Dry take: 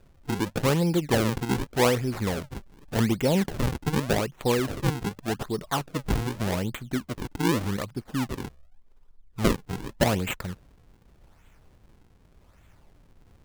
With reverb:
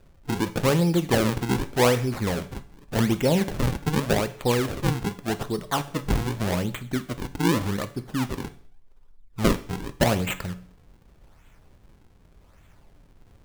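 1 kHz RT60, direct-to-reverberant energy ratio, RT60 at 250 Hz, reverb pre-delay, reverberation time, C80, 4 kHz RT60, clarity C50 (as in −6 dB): 0.50 s, 10.5 dB, 0.50 s, 7 ms, 0.50 s, 19.5 dB, 0.50 s, 16.0 dB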